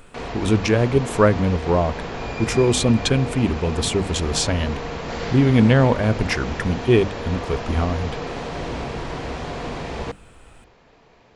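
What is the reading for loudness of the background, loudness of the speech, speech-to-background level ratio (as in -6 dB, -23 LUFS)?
-30.0 LUFS, -20.5 LUFS, 9.5 dB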